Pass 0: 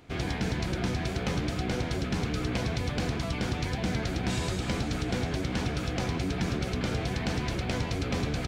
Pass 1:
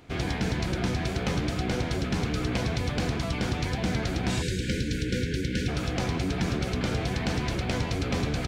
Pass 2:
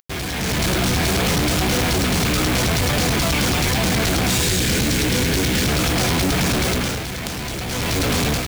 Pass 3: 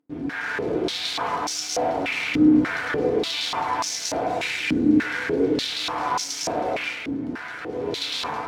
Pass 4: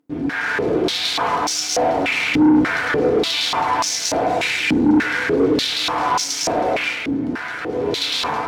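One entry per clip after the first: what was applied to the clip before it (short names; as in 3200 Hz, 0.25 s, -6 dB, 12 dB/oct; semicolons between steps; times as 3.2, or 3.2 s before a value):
spectral delete 4.42–5.68, 550–1400 Hz; gain +2 dB
high shelf 3300 Hz +10.5 dB; companded quantiser 2-bit; AGC gain up to 8 dB; gain -1 dB
FDN reverb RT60 1 s, low-frequency decay 0.95×, high-frequency decay 0.3×, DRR -2.5 dB; stepped band-pass 3.4 Hz 270–5800 Hz; gain +1.5 dB
soft clip -16 dBFS, distortion -13 dB; gain +7 dB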